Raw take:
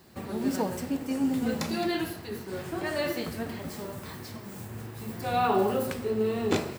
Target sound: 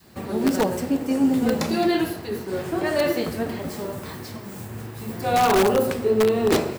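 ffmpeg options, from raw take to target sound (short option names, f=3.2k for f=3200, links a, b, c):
-filter_complex "[0:a]adynamicequalizer=threshold=0.01:dfrequency=460:dqfactor=0.76:tfrequency=460:tqfactor=0.76:attack=5:release=100:ratio=0.375:range=2.5:mode=boostabove:tftype=bell,asplit=2[a][b];[b]aeval=exprs='(mod(5.96*val(0)+1,2)-1)/5.96':c=same,volume=-3dB[c];[a][c]amix=inputs=2:normalize=0"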